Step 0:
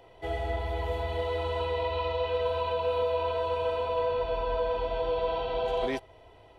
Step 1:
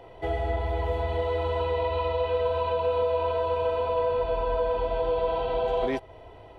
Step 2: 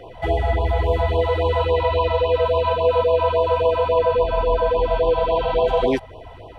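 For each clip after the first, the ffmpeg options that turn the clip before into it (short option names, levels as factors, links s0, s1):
-filter_complex "[0:a]highshelf=f=2600:g=-9,asplit=2[s0][s1];[s1]acompressor=threshold=0.0158:ratio=6,volume=1.41[s2];[s0][s2]amix=inputs=2:normalize=0"
-af "afftfilt=real='re*(1-between(b*sr/1024,300*pow(1800/300,0.5+0.5*sin(2*PI*3.6*pts/sr))/1.41,300*pow(1800/300,0.5+0.5*sin(2*PI*3.6*pts/sr))*1.41))':imag='im*(1-between(b*sr/1024,300*pow(1800/300,0.5+0.5*sin(2*PI*3.6*pts/sr))/1.41,300*pow(1800/300,0.5+0.5*sin(2*PI*3.6*pts/sr))*1.41))':win_size=1024:overlap=0.75,volume=2.82"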